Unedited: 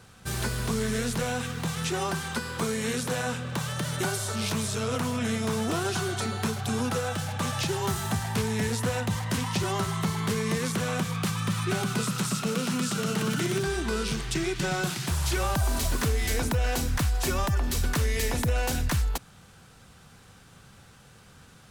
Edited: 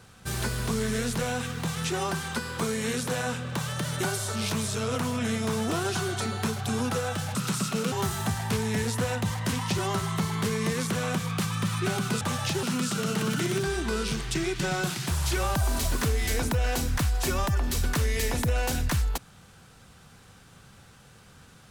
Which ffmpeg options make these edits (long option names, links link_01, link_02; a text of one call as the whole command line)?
ffmpeg -i in.wav -filter_complex "[0:a]asplit=5[link_01][link_02][link_03][link_04][link_05];[link_01]atrim=end=7.352[link_06];[link_02]atrim=start=12.058:end=12.632[link_07];[link_03]atrim=start=7.768:end=12.062[link_08];[link_04]atrim=start=7.348:end=7.772[link_09];[link_05]atrim=start=12.628[link_10];[link_06][link_07]acrossfade=duration=0.004:curve1=hsin:curve2=hsin[link_11];[link_11][link_08]acrossfade=duration=0.004:curve1=hsin:curve2=hsin[link_12];[link_12][link_09]acrossfade=duration=0.004:curve1=hsin:curve2=hsin[link_13];[link_13][link_10]acrossfade=duration=0.004:curve1=hsin:curve2=hsin" out.wav